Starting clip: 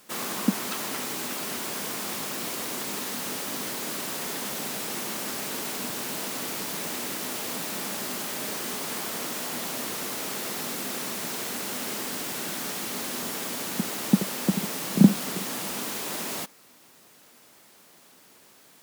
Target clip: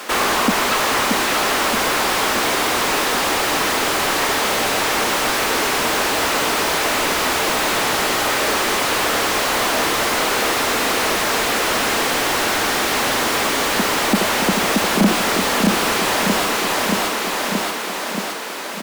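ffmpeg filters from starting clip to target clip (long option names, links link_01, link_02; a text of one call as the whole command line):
ffmpeg -i in.wav -filter_complex "[0:a]highpass=220,aecho=1:1:627|1254|1881|2508|3135|3762:0.562|0.287|0.146|0.0746|0.038|0.0194,asplit=2[link_01][link_02];[link_02]highpass=frequency=720:poles=1,volume=37dB,asoftclip=type=tanh:threshold=-4.5dB[link_03];[link_01][link_03]amix=inputs=2:normalize=0,lowpass=frequency=1800:poles=1,volume=-6dB" out.wav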